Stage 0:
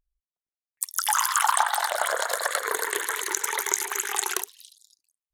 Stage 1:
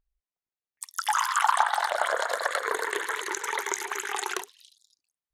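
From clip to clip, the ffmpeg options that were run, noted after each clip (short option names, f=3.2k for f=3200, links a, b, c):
-af "aemphasis=mode=reproduction:type=50fm"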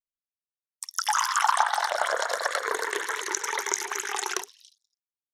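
-af "equalizer=f=5.6k:t=o:w=0.37:g=10.5,agate=range=-33dB:threshold=-47dB:ratio=3:detection=peak"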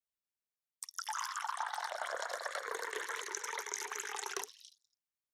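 -af "areverse,acompressor=threshold=-35dB:ratio=4,areverse,afreqshift=18,volume=-2.5dB"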